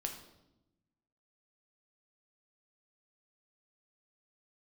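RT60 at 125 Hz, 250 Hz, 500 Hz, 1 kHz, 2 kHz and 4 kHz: 1.5 s, 1.4 s, 1.0 s, 0.80 s, 0.70 s, 0.75 s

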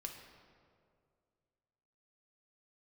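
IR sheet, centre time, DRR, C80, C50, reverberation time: 45 ms, 2.0 dB, 7.0 dB, 5.5 dB, 2.2 s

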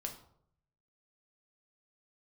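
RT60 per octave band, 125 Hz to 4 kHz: 1.1 s, 0.75 s, 0.70 s, 0.65 s, 0.45 s, 0.40 s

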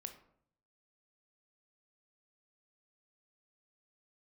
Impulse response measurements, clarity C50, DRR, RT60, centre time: 10.5 dB, 6.5 dB, 0.65 s, 12 ms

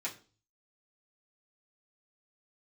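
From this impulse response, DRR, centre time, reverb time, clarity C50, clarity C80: -7.5 dB, 14 ms, 0.40 s, 13.5 dB, 18.5 dB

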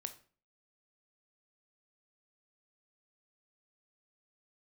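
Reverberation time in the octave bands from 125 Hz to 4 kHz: 0.50 s, 0.50 s, 0.45 s, 0.40 s, 0.40 s, 0.35 s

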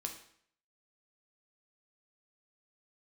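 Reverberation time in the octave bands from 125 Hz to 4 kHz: 0.65 s, 0.60 s, 0.60 s, 0.60 s, 0.60 s, 0.60 s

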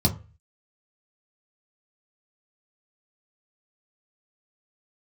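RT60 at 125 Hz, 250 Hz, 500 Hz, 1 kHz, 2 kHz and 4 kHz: 0.50 s, 0.30 s, 0.35 s, 0.35 s, 0.35 s, 0.20 s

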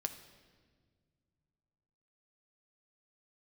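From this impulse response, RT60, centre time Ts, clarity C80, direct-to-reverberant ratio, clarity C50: 1.7 s, 13 ms, 12.5 dB, 6.5 dB, 10.5 dB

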